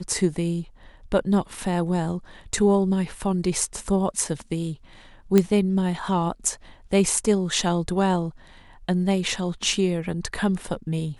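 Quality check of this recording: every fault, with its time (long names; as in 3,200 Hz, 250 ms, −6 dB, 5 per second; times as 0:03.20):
0:05.38: click −6 dBFS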